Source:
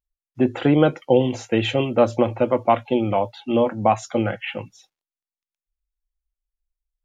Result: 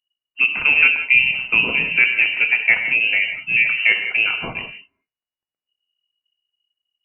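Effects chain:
reverb whose tail is shaped and stops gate 210 ms flat, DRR 5.5 dB
voice inversion scrambler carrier 2,900 Hz
level +1 dB

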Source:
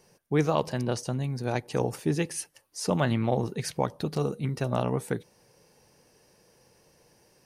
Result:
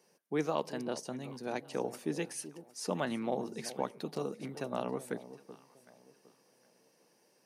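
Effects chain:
high-pass filter 190 Hz 24 dB per octave
delay that swaps between a low-pass and a high-pass 380 ms, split 870 Hz, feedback 50%, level −13 dB
level −7 dB

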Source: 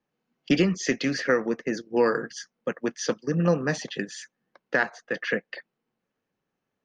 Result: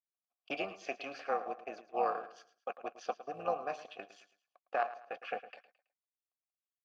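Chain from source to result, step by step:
mu-law and A-law mismatch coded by A
low-shelf EQ 240 Hz −12 dB
amplitude modulation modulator 280 Hz, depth 50%
formant filter a
repeating echo 109 ms, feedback 33%, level −15 dB
level +7 dB

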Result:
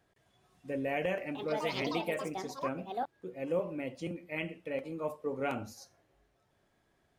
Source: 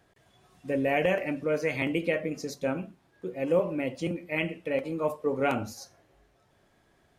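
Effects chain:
0:01.22–0:03.63: delay with pitch and tempo change per echo 131 ms, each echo +6 semitones, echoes 2
level −7.5 dB

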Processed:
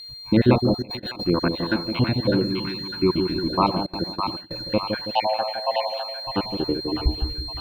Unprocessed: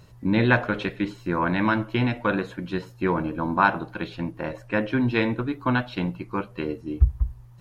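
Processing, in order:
time-frequency cells dropped at random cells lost 59%
dynamic equaliser 400 Hz, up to +7 dB, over −38 dBFS, Q 0.81
0:05.12–0:05.98: frequency shifter +420 Hz
steady tone 4,200 Hz −34 dBFS
bit reduction 9 bits
echo with a time of its own for lows and highs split 790 Hz, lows 163 ms, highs 605 ms, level −5 dB
0:00.82–0:01.24: compressor whose output falls as the input rises −31 dBFS, ratio −0.5
0:02.42–0:03.49: gain on a spectral selection 390–860 Hz −13 dB
0:03.86–0:04.51: noise gate with hold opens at −18 dBFS
low-shelf EQ 170 Hz +9.5 dB
level −2.5 dB

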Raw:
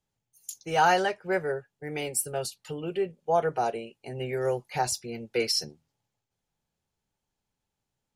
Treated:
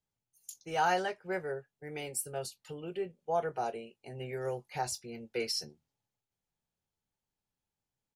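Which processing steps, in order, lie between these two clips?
double-tracking delay 22 ms −14 dB
level −7.5 dB

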